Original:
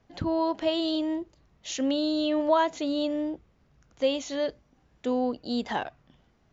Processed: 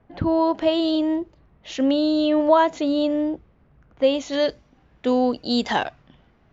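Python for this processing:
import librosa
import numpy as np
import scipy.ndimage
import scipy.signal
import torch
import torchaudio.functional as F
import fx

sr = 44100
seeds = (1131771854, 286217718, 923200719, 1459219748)

y = fx.env_lowpass(x, sr, base_hz=2300.0, full_db=-23.5)
y = fx.high_shelf(y, sr, hz=2900.0, db=fx.steps((0.0, -7.0), (4.32, 6.5)))
y = F.gain(torch.from_numpy(y), 7.0).numpy()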